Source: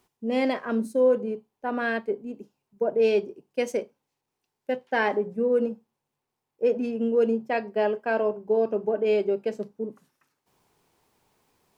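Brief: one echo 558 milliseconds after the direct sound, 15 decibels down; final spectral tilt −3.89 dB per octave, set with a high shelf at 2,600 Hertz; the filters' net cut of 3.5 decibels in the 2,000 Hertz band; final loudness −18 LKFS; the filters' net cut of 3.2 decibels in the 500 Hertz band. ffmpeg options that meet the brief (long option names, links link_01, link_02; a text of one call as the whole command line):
ffmpeg -i in.wav -af "equalizer=frequency=500:width_type=o:gain=-3.5,equalizer=frequency=2000:width_type=o:gain=-6.5,highshelf=frequency=2600:gain=5,aecho=1:1:558:0.178,volume=11dB" out.wav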